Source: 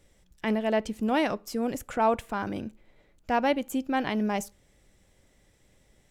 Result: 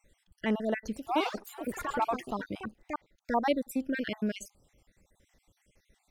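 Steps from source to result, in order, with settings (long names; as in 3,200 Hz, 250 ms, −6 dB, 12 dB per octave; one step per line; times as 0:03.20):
time-frequency cells dropped at random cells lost 52%
0:00.85–0:03.37: delay with pitch and tempo change per echo 108 ms, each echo +4 semitones, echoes 3, each echo −6 dB
level −1.5 dB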